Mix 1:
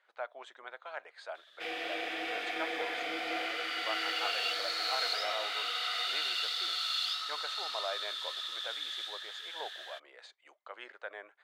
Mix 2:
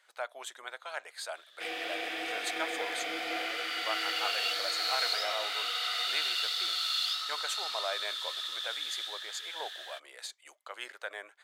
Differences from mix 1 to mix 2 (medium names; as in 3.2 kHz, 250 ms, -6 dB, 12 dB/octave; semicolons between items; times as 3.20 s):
speech: remove tape spacing loss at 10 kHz 22 dB; master: add treble shelf 6.1 kHz +8 dB